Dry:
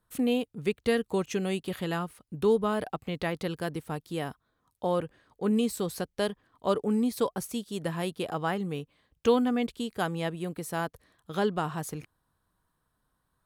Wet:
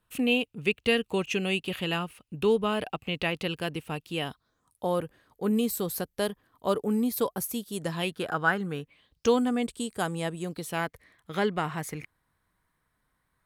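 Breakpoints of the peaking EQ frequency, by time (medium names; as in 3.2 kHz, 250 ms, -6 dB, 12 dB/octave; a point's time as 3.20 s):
peaking EQ +14 dB 0.45 oct
4.20 s 2.7 kHz
4.85 s 13 kHz
7.71 s 13 kHz
8.17 s 1.5 kHz
8.77 s 1.5 kHz
9.41 s 8.5 kHz
10.36 s 8.5 kHz
10.81 s 2.1 kHz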